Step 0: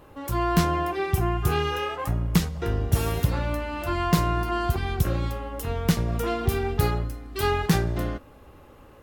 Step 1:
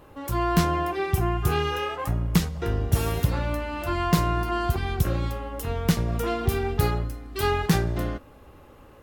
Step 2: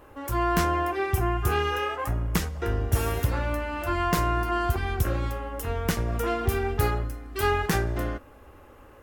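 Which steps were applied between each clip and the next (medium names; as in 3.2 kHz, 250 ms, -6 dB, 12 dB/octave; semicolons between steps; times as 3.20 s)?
no audible change
fifteen-band graphic EQ 160 Hz -9 dB, 1.6 kHz +3 dB, 4 kHz -5 dB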